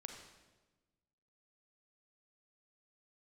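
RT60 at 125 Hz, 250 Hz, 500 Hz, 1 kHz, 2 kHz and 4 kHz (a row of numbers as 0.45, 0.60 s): 1.7, 1.6, 1.3, 1.1, 1.0, 1.0 s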